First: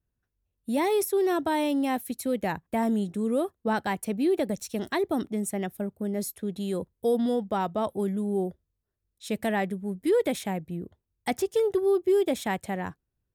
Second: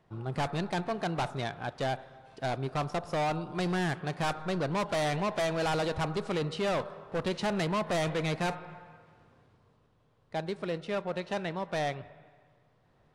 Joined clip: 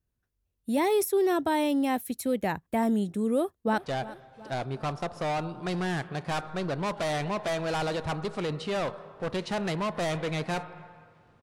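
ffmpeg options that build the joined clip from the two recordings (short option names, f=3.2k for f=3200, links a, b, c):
-filter_complex "[0:a]apad=whole_dur=11.42,atrim=end=11.42,atrim=end=3.782[a];[1:a]atrim=start=1.698:end=9.34[b];[a][b]acrossfade=d=0.004:c1=hsin:c2=hsin,asplit=2[c][d];[d]afade=t=in:st=3.36:d=0.01,afade=t=out:st=3.78:d=0.01,aecho=0:1:360|720|1080|1440|1800:0.141254|0.0776896|0.0427293|0.0235011|0.0129256[e];[c][e]amix=inputs=2:normalize=0"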